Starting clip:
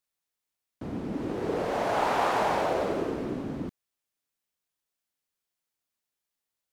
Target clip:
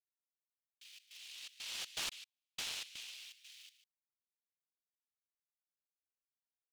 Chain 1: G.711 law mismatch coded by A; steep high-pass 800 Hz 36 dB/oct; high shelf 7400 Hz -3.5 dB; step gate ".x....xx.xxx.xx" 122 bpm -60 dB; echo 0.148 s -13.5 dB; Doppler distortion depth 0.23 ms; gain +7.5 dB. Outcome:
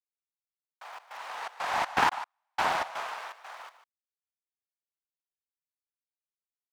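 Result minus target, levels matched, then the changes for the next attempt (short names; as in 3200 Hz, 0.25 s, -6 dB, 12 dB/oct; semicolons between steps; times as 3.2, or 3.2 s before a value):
1000 Hz band +17.0 dB
change: steep high-pass 2800 Hz 36 dB/oct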